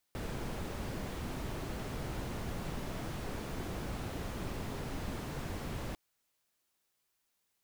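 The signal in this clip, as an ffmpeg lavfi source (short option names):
-f lavfi -i "anoisesrc=c=brown:a=0.0556:d=5.8:r=44100:seed=1"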